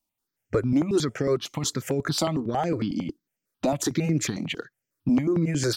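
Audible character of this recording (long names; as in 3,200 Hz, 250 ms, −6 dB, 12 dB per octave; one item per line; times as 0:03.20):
tremolo triangle 5.5 Hz, depth 45%
notches that jump at a steady rate 11 Hz 440–3,800 Hz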